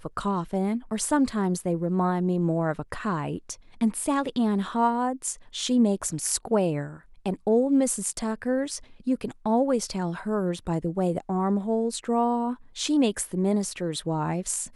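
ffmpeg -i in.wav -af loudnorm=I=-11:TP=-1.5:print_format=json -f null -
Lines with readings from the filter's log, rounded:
"input_i" : "-26.6",
"input_tp" : "-8.7",
"input_lra" : "1.3",
"input_thresh" : "-36.6",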